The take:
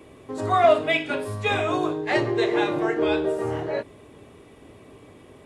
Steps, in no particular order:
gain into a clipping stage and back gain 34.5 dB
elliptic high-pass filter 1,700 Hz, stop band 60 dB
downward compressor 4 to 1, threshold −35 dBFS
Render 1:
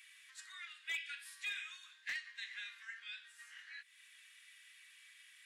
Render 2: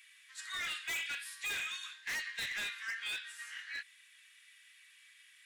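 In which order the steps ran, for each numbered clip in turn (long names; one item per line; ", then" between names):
downward compressor, then elliptic high-pass filter, then gain into a clipping stage and back
elliptic high-pass filter, then gain into a clipping stage and back, then downward compressor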